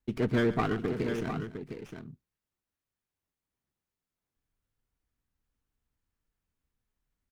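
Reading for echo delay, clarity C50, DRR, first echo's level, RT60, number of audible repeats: 127 ms, no reverb audible, no reverb audible, −16.0 dB, no reverb audible, 3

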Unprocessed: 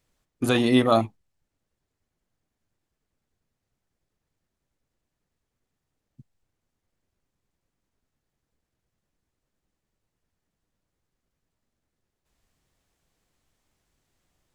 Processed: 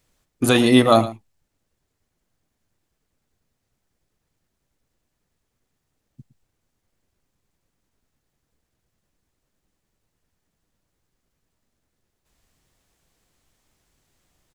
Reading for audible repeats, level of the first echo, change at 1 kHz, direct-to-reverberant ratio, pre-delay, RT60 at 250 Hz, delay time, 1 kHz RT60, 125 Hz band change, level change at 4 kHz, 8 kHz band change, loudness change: 1, −16.0 dB, +5.5 dB, no reverb audible, no reverb audible, no reverb audible, 112 ms, no reverb audible, +5.0 dB, +6.5 dB, +10.0 dB, +5.0 dB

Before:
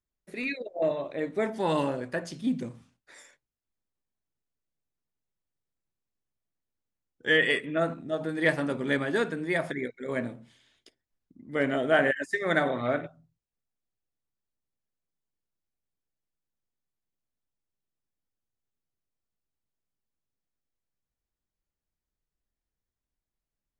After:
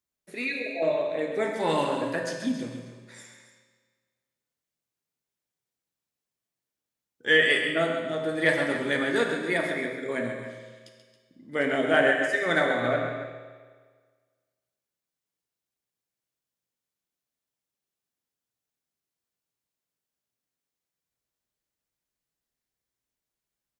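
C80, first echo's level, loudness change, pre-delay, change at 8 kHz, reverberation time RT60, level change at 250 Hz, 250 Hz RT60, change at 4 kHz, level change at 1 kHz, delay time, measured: 4.0 dB, −8.5 dB, +2.5 dB, 8 ms, can't be measured, 1.6 s, +0.5 dB, 1.5 s, +5.0 dB, +2.5 dB, 133 ms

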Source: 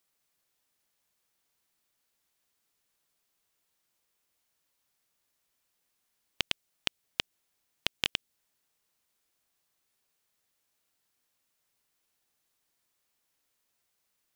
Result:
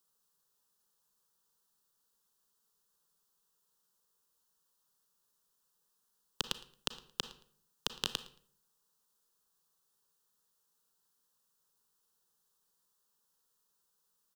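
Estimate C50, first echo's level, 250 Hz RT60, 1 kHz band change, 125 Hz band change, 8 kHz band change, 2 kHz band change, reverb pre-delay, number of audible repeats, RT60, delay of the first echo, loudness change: 13.0 dB, −21.5 dB, 0.70 s, −0.5 dB, −2.5 dB, 0.0 dB, −10.0 dB, 31 ms, 2, 0.55 s, 112 ms, −5.0 dB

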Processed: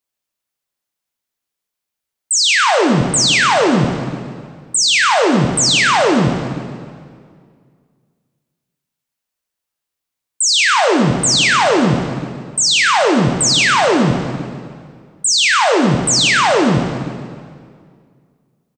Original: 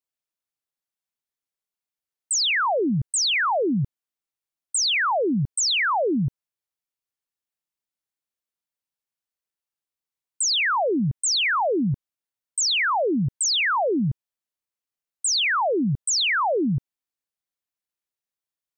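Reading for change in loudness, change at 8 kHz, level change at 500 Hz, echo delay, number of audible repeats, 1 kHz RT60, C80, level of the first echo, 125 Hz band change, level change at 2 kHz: +9.0 dB, +9.0 dB, +9.5 dB, 141 ms, 1, 2.0 s, 5.0 dB, −11.0 dB, +9.0 dB, +9.5 dB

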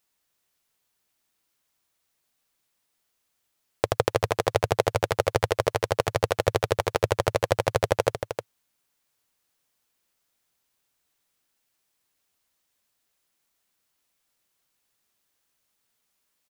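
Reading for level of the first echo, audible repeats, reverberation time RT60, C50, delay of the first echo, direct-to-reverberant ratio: −8.5 dB, 1, no reverb audible, no reverb audible, 309 ms, no reverb audible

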